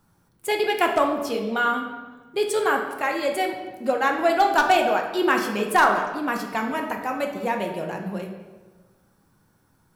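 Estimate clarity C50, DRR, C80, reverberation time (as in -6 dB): 5.5 dB, 2.0 dB, 7.5 dB, 1.3 s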